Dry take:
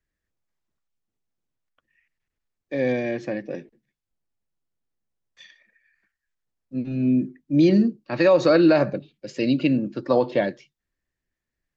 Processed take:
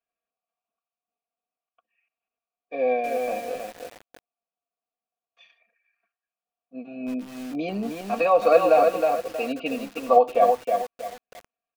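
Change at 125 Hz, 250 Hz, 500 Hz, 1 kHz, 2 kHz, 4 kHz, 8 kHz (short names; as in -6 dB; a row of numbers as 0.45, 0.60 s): -17.0 dB, -11.0 dB, +1.0 dB, +10.0 dB, -3.0 dB, -5.0 dB, n/a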